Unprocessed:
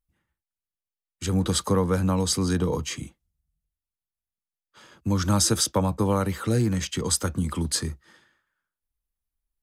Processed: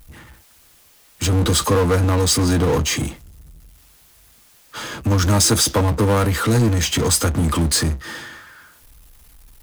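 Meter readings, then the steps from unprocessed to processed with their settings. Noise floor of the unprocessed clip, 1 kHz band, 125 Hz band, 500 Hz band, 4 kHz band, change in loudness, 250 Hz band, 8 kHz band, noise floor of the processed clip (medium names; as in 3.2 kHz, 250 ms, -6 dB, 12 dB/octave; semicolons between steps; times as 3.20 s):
under -85 dBFS, +7.0 dB, +8.0 dB, +7.0 dB, +8.0 dB, +7.0 dB, +5.0 dB, +7.0 dB, -52 dBFS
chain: comb of notches 190 Hz; power-law waveshaper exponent 0.5; trim +2.5 dB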